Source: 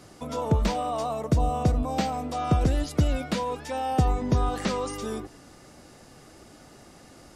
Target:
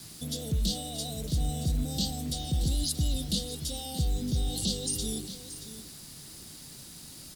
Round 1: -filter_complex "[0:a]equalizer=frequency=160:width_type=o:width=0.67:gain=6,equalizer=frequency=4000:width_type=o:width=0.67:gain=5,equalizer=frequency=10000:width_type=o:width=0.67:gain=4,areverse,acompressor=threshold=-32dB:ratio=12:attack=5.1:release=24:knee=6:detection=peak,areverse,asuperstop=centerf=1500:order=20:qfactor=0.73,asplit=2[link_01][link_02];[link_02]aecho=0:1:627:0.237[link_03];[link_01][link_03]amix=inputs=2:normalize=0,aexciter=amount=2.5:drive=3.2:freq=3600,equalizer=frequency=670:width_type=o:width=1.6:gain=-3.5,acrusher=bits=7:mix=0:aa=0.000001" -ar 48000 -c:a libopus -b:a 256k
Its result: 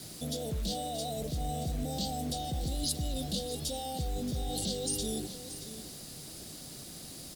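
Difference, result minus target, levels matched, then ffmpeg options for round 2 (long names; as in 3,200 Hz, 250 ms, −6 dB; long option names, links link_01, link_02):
500 Hz band +8.0 dB; downward compressor: peak gain reduction +8 dB
-filter_complex "[0:a]equalizer=frequency=160:width_type=o:width=0.67:gain=6,equalizer=frequency=4000:width_type=o:width=0.67:gain=5,equalizer=frequency=10000:width_type=o:width=0.67:gain=4,areverse,acompressor=threshold=-23.5dB:ratio=12:attack=5.1:release=24:knee=6:detection=peak,areverse,asuperstop=centerf=1500:order=20:qfactor=0.73,asplit=2[link_01][link_02];[link_02]aecho=0:1:627:0.237[link_03];[link_01][link_03]amix=inputs=2:normalize=0,aexciter=amount=2.5:drive=3.2:freq=3600,equalizer=frequency=670:width_type=o:width=1.6:gain=-15,acrusher=bits=7:mix=0:aa=0.000001" -ar 48000 -c:a libopus -b:a 256k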